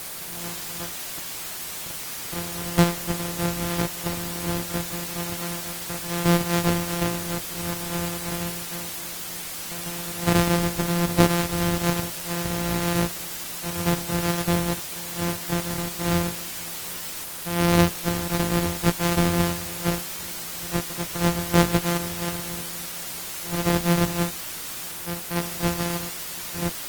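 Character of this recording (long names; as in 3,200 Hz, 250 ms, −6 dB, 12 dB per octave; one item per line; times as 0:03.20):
a buzz of ramps at a fixed pitch in blocks of 256 samples
tremolo triangle 0.8 Hz, depth 55%
a quantiser's noise floor 6 bits, dither triangular
Opus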